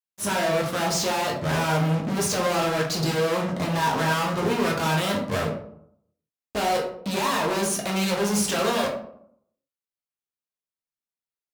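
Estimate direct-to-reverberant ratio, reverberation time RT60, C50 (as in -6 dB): -1.5 dB, 0.70 s, 6.5 dB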